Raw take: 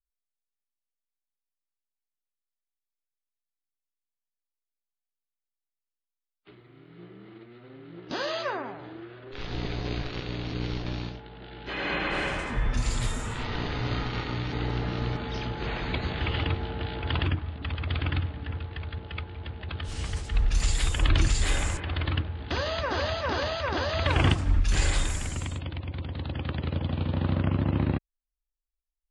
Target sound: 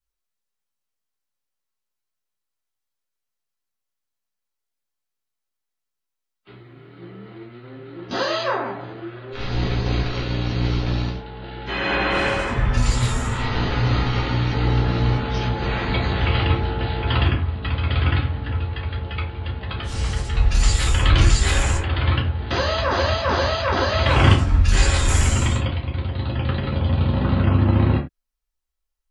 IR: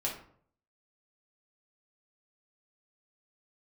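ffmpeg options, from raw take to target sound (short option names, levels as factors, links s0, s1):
-filter_complex "[0:a]asettb=1/sr,asplit=3[s0][s1][s2];[s0]atrim=end=25.084[s3];[s1]atrim=start=25.08:end=25.68,asetpts=PTS-STARTPTS,afade=t=in:d=0.004:c=qsin,afade=t=out:st=0.596:d=0.004:c=qsin,acontrast=33[s4];[s2]atrim=start=25.676[s5];[s3][s4]acrossfade=d=0.004:c1=hsin:c2=qsin[s6];[s6][s5]acrossfade=d=0.004:c1=qsin:c2=hsin[s7];[1:a]atrim=start_sample=2205,afade=t=out:st=0.23:d=0.01,atrim=end_sample=10584,asetrate=74970,aresample=44100[s8];[s7][s8]afir=irnorm=-1:irlink=0,volume=2.66"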